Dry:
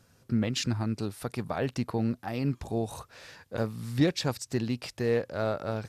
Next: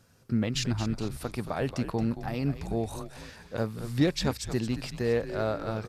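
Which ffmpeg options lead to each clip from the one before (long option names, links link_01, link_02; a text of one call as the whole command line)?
ffmpeg -i in.wav -filter_complex "[0:a]asplit=5[link_01][link_02][link_03][link_04][link_05];[link_02]adelay=224,afreqshift=-92,volume=-10.5dB[link_06];[link_03]adelay=448,afreqshift=-184,volume=-18.2dB[link_07];[link_04]adelay=672,afreqshift=-276,volume=-26dB[link_08];[link_05]adelay=896,afreqshift=-368,volume=-33.7dB[link_09];[link_01][link_06][link_07][link_08][link_09]amix=inputs=5:normalize=0" out.wav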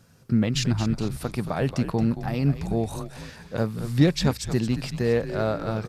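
ffmpeg -i in.wav -af "equalizer=frequency=160:width=1.9:gain=6,volume=3.5dB" out.wav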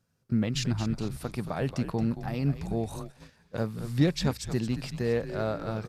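ffmpeg -i in.wav -af "agate=range=-13dB:threshold=-36dB:ratio=16:detection=peak,volume=-5dB" out.wav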